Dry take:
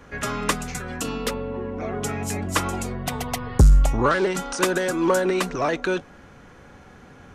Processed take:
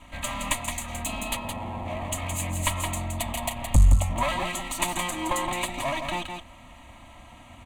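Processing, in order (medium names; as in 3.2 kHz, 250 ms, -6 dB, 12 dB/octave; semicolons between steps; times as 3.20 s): comb filter that takes the minimum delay 3 ms; peaking EQ 7.4 kHz +9.5 dB 1.4 oct; in parallel at +1.5 dB: compression, threshold -31 dBFS, peak gain reduction 20 dB; on the sum: speed mistake 25 fps video run at 24 fps; static phaser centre 1.5 kHz, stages 6; on a send: delay 168 ms -6 dB; on the sum: trim -3.5 dB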